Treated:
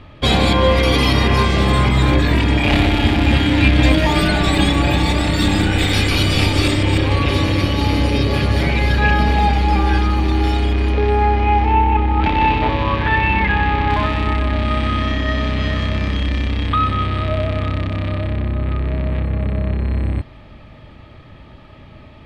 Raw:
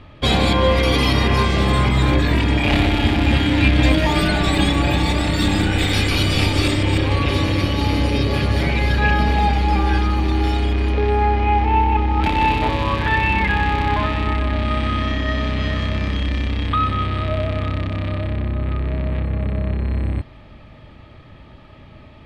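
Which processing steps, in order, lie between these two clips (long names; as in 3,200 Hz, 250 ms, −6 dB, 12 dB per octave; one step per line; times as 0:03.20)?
0:11.73–0:13.90: low-pass filter 3,800 Hz 12 dB per octave
level +2 dB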